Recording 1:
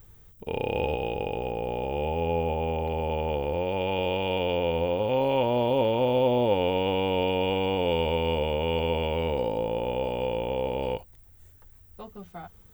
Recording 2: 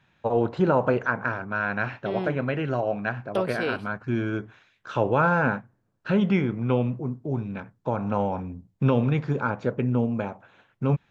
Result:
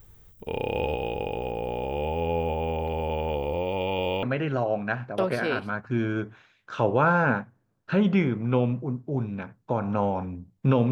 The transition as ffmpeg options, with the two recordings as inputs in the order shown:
-filter_complex "[0:a]asettb=1/sr,asplit=3[a][b][c];[a]atrim=end=3.344[d];[b]atrim=start=3.34:end=4.23,asetpts=PTS-STARTPTS,afade=t=in:d=0.004:c=qsin,afade=t=out:st=0.886:d=0.004:c=qsin,asuperstop=centerf=1600:order=4:qfactor=3.6[e];[c]atrim=start=4.226[f];[d][e]acrossfade=d=0.004:c1=hsin:c2=qsin[g];[g][f]acrossfade=d=0.004:c1=qsin:c2=hsin,apad=whole_dur=10.91,atrim=end=10.91,atrim=end=4.232[h];[1:a]atrim=start=2.398:end=9.08[i];[h][i]acrossfade=d=0.004:c1=hsin:c2=hsin"

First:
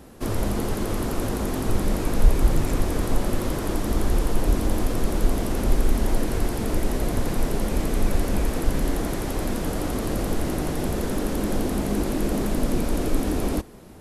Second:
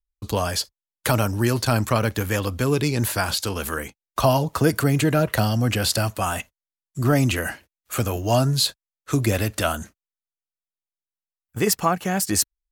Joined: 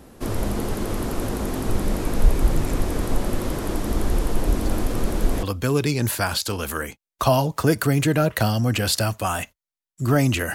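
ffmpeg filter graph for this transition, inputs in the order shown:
-filter_complex "[1:a]asplit=2[a][b];[0:a]apad=whole_dur=10.54,atrim=end=10.54,atrim=end=5.432[c];[b]atrim=start=2.398:end=7.51[d];[a]atrim=start=1.55:end=2.4,asetpts=PTS-STARTPTS,volume=-18dB,afade=t=in:d=0.004:c=hsin,afade=t=out:st=0.846:d=0.004:c=hsin,adelay=4580[e];[c][d]acrossfade=d=0.004:c1=hsin:c2=hsin[f];[f][e]amix=inputs=2:normalize=0"

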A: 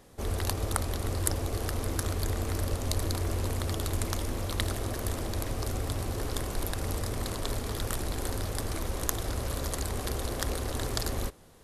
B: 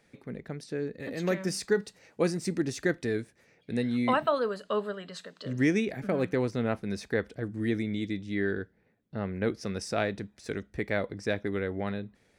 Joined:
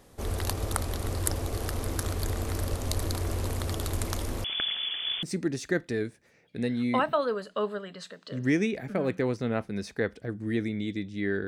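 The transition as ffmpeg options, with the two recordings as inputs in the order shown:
-filter_complex "[0:a]asettb=1/sr,asplit=3[a][b][c];[a]atrim=end=4.444[d];[b]atrim=start=4.44:end=5.23,asetpts=PTS-STARTPTS,afade=t=in:d=0.004:c=qsin,afade=t=out:st=0.786:d=0.004:c=qsin,lowpass=f=3k:t=q:w=0.5098,lowpass=f=3k:t=q:w=0.6013,lowpass=f=3k:t=q:w=0.9,lowpass=f=3k:t=q:w=2.563,afreqshift=-3500[e];[c]atrim=start=5.226[f];[d][e]acrossfade=d=0.004:c1=hsin:c2=qsin[g];[g][f]acrossfade=d=0.004:c1=qsin:c2=hsin,apad=whole_dur=11.47,atrim=end=11.47,atrim=end=5.232[h];[1:a]atrim=start=2.368:end=8.61[i];[h][i]acrossfade=d=0.004:c1=hsin:c2=hsin"

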